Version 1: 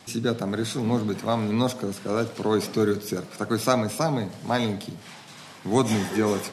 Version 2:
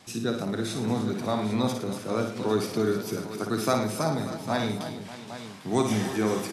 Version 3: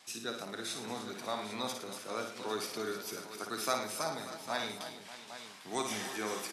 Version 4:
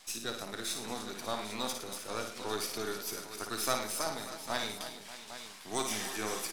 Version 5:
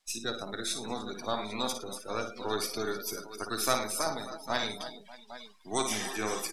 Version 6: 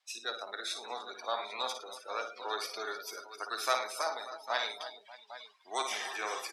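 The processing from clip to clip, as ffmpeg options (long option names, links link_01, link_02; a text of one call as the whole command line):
ffmpeg -i in.wav -af "aecho=1:1:56|110|261|311|582|801:0.501|0.266|0.112|0.224|0.158|0.251,volume=-4dB" out.wav
ffmpeg -i in.wav -af "highpass=frequency=1200:poles=1,volume=-2.5dB" out.wav
ffmpeg -i in.wav -af "aeval=exprs='if(lt(val(0),0),0.447*val(0),val(0))':channel_layout=same,highshelf=frequency=4800:gain=6,volume=2.5dB" out.wav
ffmpeg -i in.wav -af "afftdn=noise_reduction=24:noise_floor=-44,volume=4dB" out.wav
ffmpeg -i in.wav -filter_complex "[0:a]highpass=360,acrossover=split=460 5000:gain=0.112 1 0.251[link_01][link_02][link_03];[link_01][link_02][link_03]amix=inputs=3:normalize=0" out.wav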